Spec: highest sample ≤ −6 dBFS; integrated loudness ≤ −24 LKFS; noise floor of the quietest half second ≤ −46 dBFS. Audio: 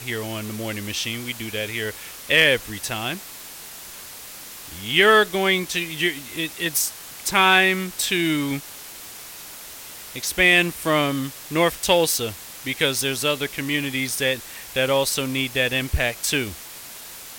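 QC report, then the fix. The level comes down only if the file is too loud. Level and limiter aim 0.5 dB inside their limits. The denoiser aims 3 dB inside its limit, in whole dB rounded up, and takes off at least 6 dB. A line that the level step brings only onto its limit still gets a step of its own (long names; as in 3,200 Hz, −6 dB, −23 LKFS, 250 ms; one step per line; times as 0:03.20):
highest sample −3.5 dBFS: out of spec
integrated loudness −21.0 LKFS: out of spec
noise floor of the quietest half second −39 dBFS: out of spec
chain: broadband denoise 7 dB, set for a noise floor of −39 dBFS
level −3.5 dB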